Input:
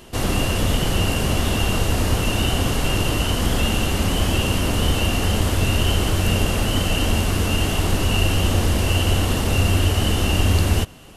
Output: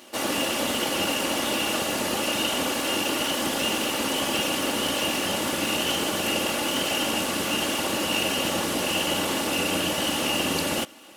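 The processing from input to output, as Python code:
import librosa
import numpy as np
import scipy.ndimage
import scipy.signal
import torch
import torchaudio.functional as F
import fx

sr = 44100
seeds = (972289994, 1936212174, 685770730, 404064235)

y = fx.lower_of_two(x, sr, delay_ms=3.5)
y = scipy.signal.sosfilt(scipy.signal.butter(2, 290.0, 'highpass', fs=sr, output='sos'), y)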